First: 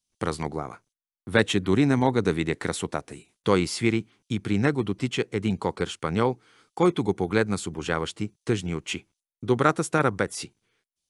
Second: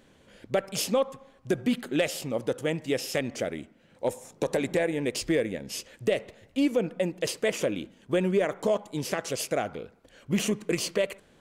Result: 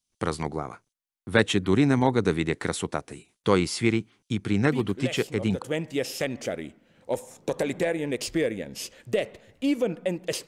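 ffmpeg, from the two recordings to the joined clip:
-filter_complex "[1:a]asplit=2[a][b];[0:a]apad=whole_dur=10.47,atrim=end=10.47,atrim=end=5.622[c];[b]atrim=start=2.558:end=7.41[d];[a]atrim=start=1.59:end=2.56,asetpts=PTS-STARTPTS,volume=-7.5dB,afade=t=in:d=0.004:c=hsin,afade=t=out:st=0.966:d=0.004:c=hsin,adelay=205065S[e];[c][d]acrossfade=d=0.004:c1=hsin:c2=hsin[f];[f][e]amix=inputs=2:normalize=0"

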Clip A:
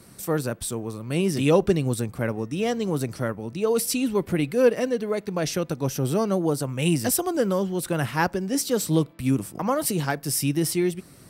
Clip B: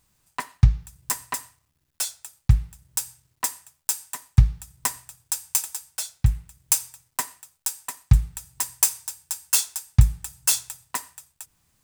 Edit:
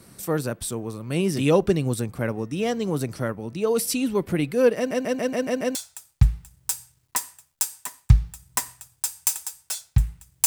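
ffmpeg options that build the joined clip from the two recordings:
-filter_complex "[0:a]apad=whole_dur=10.46,atrim=end=10.46,asplit=7[a][b][c][d][e][f][g];[a]atrim=end=4.912[h];[b]atrim=start=4.768:end=4.912[i];[c]atrim=start=4.768:end=4.912[j];[d]atrim=start=4.768:end=4.912[k];[e]atrim=start=4.768:end=4.912[l];[f]atrim=start=4.768:end=4.912[m];[g]atrim=start=4.768:end=4.912[n];[1:a]atrim=start=2.028:end=6.74[o];[h][i]acrossfade=d=0.004:c1=hsin:c2=hsin[p];[p][j]acrossfade=d=0.004:c1=hsin:c2=hsin[q];[q][k]acrossfade=d=0.004:c1=hsin:c2=hsin[r];[r][l]acrossfade=d=0.004:c1=hsin:c2=hsin[s];[s][m]acrossfade=d=0.004:c1=hsin:c2=hsin[t];[t][n]acrossfade=d=0.004:c1=hsin:c2=hsin[u];[u][o]acrossfade=d=0.004:c1=hsin:c2=hsin"

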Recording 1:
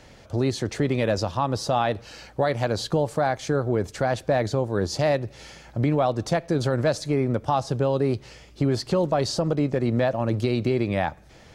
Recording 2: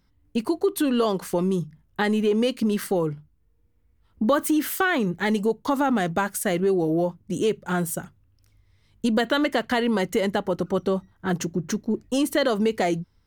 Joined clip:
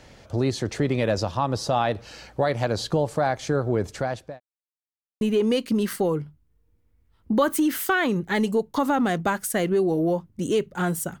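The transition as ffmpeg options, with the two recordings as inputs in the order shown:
-filter_complex "[0:a]apad=whole_dur=11.2,atrim=end=11.2,asplit=2[a][b];[a]atrim=end=4.4,asetpts=PTS-STARTPTS,afade=t=out:st=3.9:d=0.5[c];[b]atrim=start=4.4:end=5.21,asetpts=PTS-STARTPTS,volume=0[d];[1:a]atrim=start=2.12:end=8.11,asetpts=PTS-STARTPTS,afade=t=in:d=0.004:c=hsin[e];[c][d][e]concat=n=3:v=0:a=1"

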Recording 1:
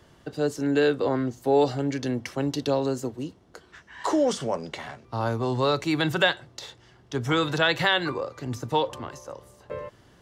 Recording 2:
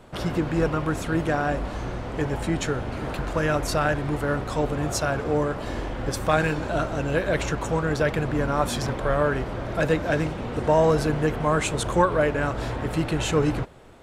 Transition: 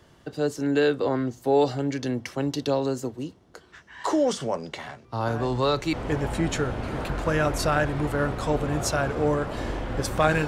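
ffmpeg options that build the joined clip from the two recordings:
-filter_complex "[1:a]asplit=2[a][b];[0:a]apad=whole_dur=10.47,atrim=end=10.47,atrim=end=5.932[c];[b]atrim=start=2.018:end=6.56[d];[a]atrim=start=1.36:end=2.02,asetpts=PTS-STARTPTS,volume=-11dB,afade=t=in:d=0.004:c=hsin,afade=t=out:st=0.656:d=0.004:c=hsin,adelay=5270[e];[c][d]acrossfade=d=0.004:c1=hsin:c2=hsin[f];[f][e]amix=inputs=2:normalize=0"

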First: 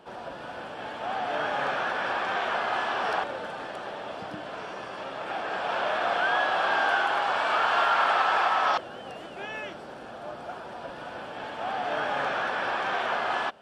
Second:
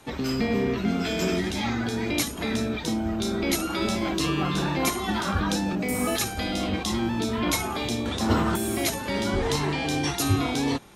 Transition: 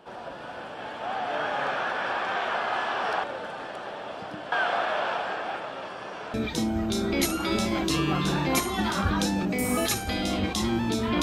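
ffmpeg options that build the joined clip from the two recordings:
-filter_complex "[0:a]apad=whole_dur=11.22,atrim=end=11.22,asplit=2[a][b];[a]atrim=end=4.522[c];[b]atrim=start=4.518:end=6.342,asetpts=PTS-STARTPTS,areverse[d];[1:a]atrim=start=2.638:end=7.52[e];[c][d]acrossfade=d=0.004:c1=hsin:c2=hsin[f];[f][e]acrossfade=d=0.004:c1=hsin:c2=hsin"

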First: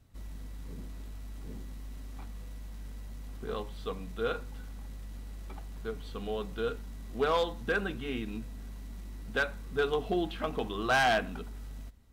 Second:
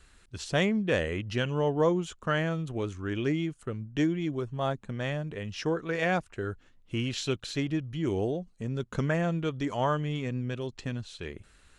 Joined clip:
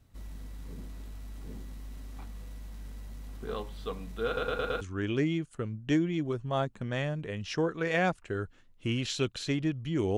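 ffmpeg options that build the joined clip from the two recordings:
-filter_complex "[0:a]apad=whole_dur=10.17,atrim=end=10.17,asplit=5[a][b][c][d][e];[a]atrim=end=4.372[f];[b]atrim=start=4.258:end=4.372[g];[c]atrim=start=4.258:end=4.372[h];[d]atrim=start=4.258:end=4.372[i];[e]atrim=start=4.258:end=4.372[j];[1:a]atrim=start=2.888:end=8.25[k];[f][g]acrossfade=d=0.004:c1=hsin:c2=hsin[l];[l][h]acrossfade=d=0.004:c1=hsin:c2=hsin[m];[m][i]acrossfade=d=0.004:c1=hsin:c2=hsin[n];[n][j]acrossfade=d=0.004:c1=hsin:c2=hsin[o];[o][k]acrossfade=d=0.004:c1=hsin:c2=hsin"

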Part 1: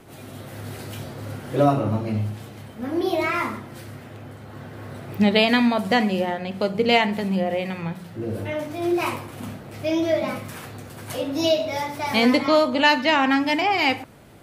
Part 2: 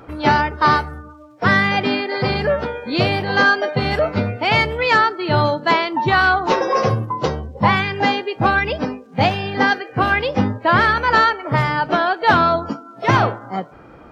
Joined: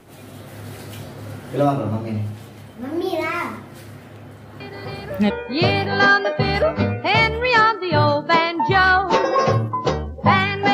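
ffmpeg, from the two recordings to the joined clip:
-filter_complex "[1:a]asplit=2[a][b];[0:a]apad=whole_dur=10.73,atrim=end=10.73,atrim=end=5.302[c];[b]atrim=start=2.668:end=8.1[d];[a]atrim=start=1.97:end=2.67,asetpts=PTS-STARTPTS,volume=-13dB,afade=t=in:d=0.004:c=hsin,afade=t=out:st=0.696:d=0.004:c=hsin,adelay=4600[e];[c][d]acrossfade=d=0.004:c1=hsin:c2=hsin[f];[f][e]amix=inputs=2:normalize=0"

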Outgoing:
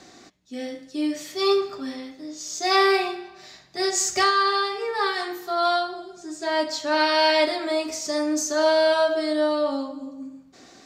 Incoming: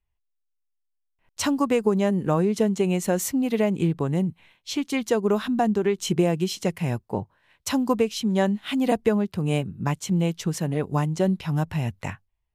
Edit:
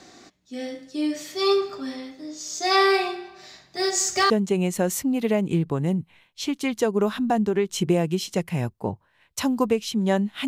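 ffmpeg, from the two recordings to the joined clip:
-filter_complex "[0:a]asettb=1/sr,asplit=3[a][b][c];[a]atrim=end=3.744[d];[b]atrim=start=3.74:end=4.3,asetpts=PTS-STARTPTS,afade=t=in:d=0.004:c=qsin,afade=t=out:st=0.556:d=0.004:c=qsin,acrusher=bits=9:mode=log:mix=0:aa=0.000001[e];[c]atrim=start=4.296[f];[d][e]acrossfade=d=0.004:c1=hsin:c2=qsin[g];[g][f]acrossfade=d=0.004:c1=qsin:c2=hsin,apad=whole_dur=10.47,atrim=end=10.47,atrim=end=4.302[h];[1:a]atrim=start=2.588:end=8.76[i];[h][i]acrossfade=d=0.004:c1=hsin:c2=hsin"

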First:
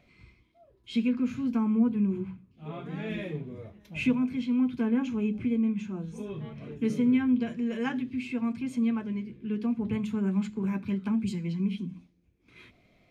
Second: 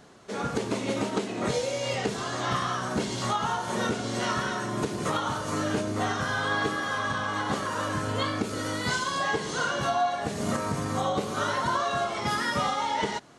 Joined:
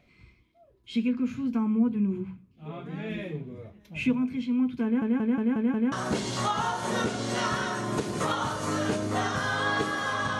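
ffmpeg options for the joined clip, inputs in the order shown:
-filter_complex "[0:a]apad=whole_dur=10.39,atrim=end=10.39,asplit=6[a][b][c][d][e][f];[a]atrim=end=5.022[g];[b]atrim=start=4.838:end=5.022[h];[c]atrim=start=4.838:end=5.022[i];[d]atrim=start=4.838:end=5.022[j];[e]atrim=start=4.838:end=5.022[k];[f]atrim=start=4.838:end=5.022[l];[1:a]atrim=start=2.768:end=7.24[m];[g][h]acrossfade=d=0.004:c1=hsin:c2=hsin[n];[n][i]acrossfade=d=0.004:c1=hsin:c2=hsin[o];[o][j]acrossfade=d=0.004:c1=hsin:c2=hsin[p];[p][k]acrossfade=d=0.004:c1=hsin:c2=hsin[q];[q][l]acrossfade=d=0.004:c1=hsin:c2=hsin[r];[r][m]acrossfade=d=0.004:c1=hsin:c2=hsin"

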